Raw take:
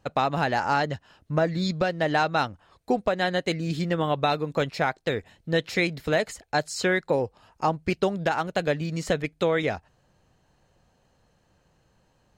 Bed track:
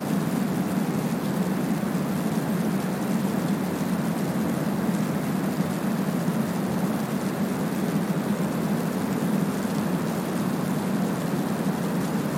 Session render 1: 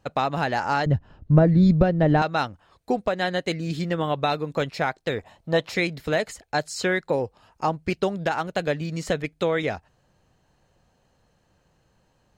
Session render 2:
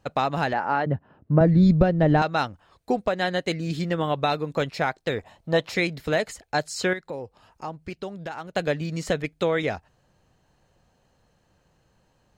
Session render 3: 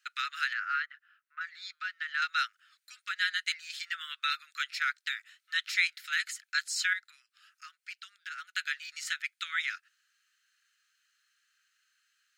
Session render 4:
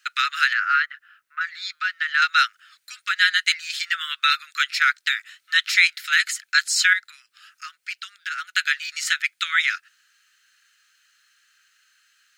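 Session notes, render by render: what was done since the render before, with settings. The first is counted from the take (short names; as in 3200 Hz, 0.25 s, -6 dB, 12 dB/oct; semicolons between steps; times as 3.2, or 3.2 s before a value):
0.86–2.22 tilt -4.5 dB/oct; 5.18–5.72 band shelf 830 Hz +9.5 dB 1.3 oct
0.53–1.41 BPF 170–2000 Hz; 6.93–8.56 compressor 1.5:1, threshold -47 dBFS
steep high-pass 1300 Hz 96 dB/oct
gain +12 dB; limiter -3 dBFS, peak gain reduction 2 dB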